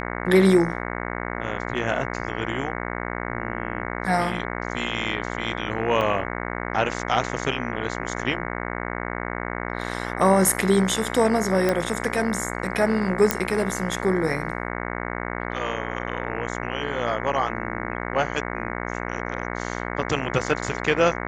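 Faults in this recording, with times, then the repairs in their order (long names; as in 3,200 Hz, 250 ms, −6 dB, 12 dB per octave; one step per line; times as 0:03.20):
mains buzz 60 Hz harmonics 37 −30 dBFS
0:06.01: drop-out 4.5 ms
0:11.69: click −9 dBFS
0:13.31: click −2 dBFS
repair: click removal
hum removal 60 Hz, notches 37
repair the gap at 0:06.01, 4.5 ms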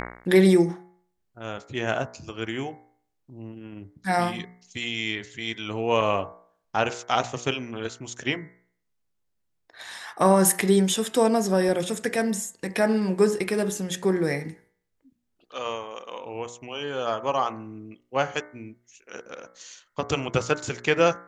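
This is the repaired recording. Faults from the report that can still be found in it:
none of them is left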